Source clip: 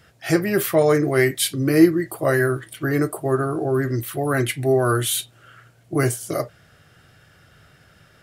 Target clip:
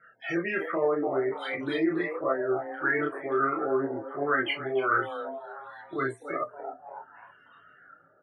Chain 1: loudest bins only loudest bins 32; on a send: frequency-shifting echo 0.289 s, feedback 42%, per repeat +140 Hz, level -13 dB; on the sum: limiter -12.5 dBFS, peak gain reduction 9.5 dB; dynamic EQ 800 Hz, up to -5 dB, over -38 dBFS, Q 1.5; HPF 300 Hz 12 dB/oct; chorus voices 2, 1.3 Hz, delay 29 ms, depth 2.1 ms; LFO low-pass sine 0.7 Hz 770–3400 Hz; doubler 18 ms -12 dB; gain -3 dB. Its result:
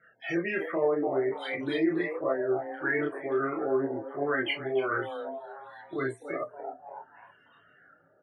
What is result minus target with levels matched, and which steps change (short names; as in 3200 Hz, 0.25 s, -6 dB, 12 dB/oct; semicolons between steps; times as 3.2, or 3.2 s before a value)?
1000 Hz band -3.5 dB
add after HPF: bell 1300 Hz +9 dB 0.4 oct